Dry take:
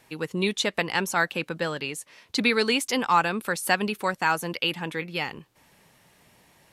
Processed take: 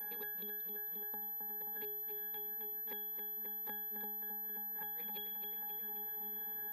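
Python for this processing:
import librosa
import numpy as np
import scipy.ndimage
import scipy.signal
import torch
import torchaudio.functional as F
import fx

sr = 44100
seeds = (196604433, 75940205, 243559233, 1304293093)

y = fx.bin_compress(x, sr, power=0.6)
y = fx.gate_flip(y, sr, shuts_db=-12.0, range_db=-24)
y = scipy.signal.sosfilt(scipy.signal.butter(4, 98.0, 'highpass', fs=sr, output='sos'), y)
y = fx.low_shelf(y, sr, hz=150.0, db=4.5)
y = fx.power_curve(y, sr, exponent=1.4)
y = fx.octave_resonator(y, sr, note='G#', decay_s=0.59)
y = y + 10.0 ** (-67.0 / 20.0) * np.sin(2.0 * np.pi * 12000.0 * np.arange(len(y)) / sr)
y = fx.riaa(y, sr, side='recording')
y = fx.echo_feedback(y, sr, ms=266, feedback_pct=56, wet_db=-8.0)
y = fx.band_squash(y, sr, depth_pct=100)
y = F.gain(torch.from_numpy(y), 7.0).numpy()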